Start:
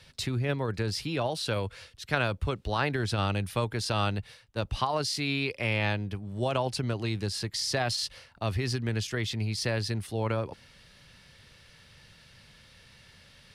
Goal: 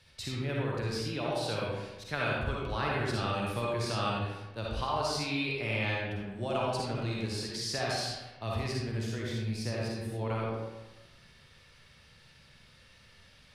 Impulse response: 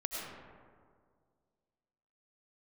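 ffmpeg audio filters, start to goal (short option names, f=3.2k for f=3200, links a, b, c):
-filter_complex "[0:a]asettb=1/sr,asplit=3[a][b][c];[a]atrim=end=8.724[d];[b]atrim=start=8.72:end=10.19,asetpts=PTS-STARTPTS,afade=t=in:d=0.004:c=qsin,afade=t=out:st=1.466:d=0.004:c=qsin,equalizer=f=3k:t=o:w=3:g=-5.5[e];[c]atrim=start=10.186[f];[d][e]acrossfade=d=0.004:c1=hsin:c2=qsin[g];[g][f]acrossfade=d=0.004:c1=qsin:c2=hsin[h];[1:a]atrim=start_sample=2205,asetrate=83790,aresample=44100[i];[h][i]afir=irnorm=-1:irlink=0"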